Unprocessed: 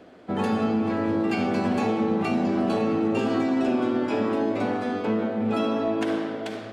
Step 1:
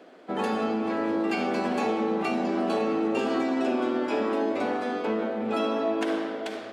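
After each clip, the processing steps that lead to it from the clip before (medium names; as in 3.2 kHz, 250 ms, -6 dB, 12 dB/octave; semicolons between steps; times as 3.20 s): high-pass 290 Hz 12 dB/octave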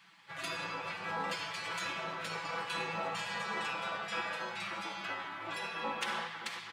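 bass shelf 360 Hz -4 dB; spectral gate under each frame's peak -15 dB weak; comb 6 ms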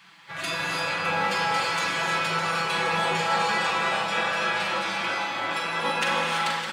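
multi-tap echo 42/610 ms -6.5/-10 dB; gated-style reverb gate 360 ms rising, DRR -0.5 dB; trim +8 dB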